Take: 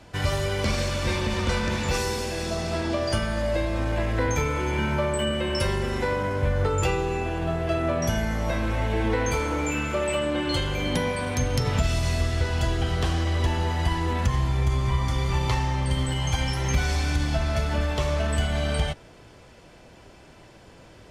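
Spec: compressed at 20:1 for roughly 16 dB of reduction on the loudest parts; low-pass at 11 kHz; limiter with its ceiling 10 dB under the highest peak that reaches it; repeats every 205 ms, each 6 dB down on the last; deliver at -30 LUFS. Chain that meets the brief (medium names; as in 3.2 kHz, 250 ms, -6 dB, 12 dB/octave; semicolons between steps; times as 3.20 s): low-pass 11 kHz; compression 20:1, threshold -34 dBFS; peak limiter -32.5 dBFS; feedback delay 205 ms, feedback 50%, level -6 dB; trim +10.5 dB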